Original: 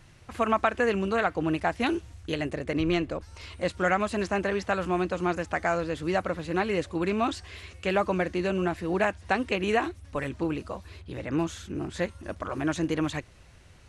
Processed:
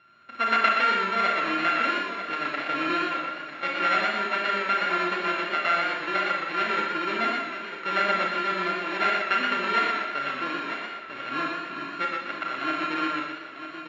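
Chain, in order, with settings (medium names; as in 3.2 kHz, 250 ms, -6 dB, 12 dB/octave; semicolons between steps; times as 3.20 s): sorted samples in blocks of 32 samples; cabinet simulation 440–3600 Hz, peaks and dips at 480 Hz -9 dB, 830 Hz -10 dB, 1.5 kHz +5 dB, 2.1 kHz +6 dB; feedback delay 948 ms, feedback 34%, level -10 dB; Schroeder reverb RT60 0.68 s, combs from 28 ms, DRR 1 dB; modulated delay 121 ms, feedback 34%, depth 64 cents, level -4.5 dB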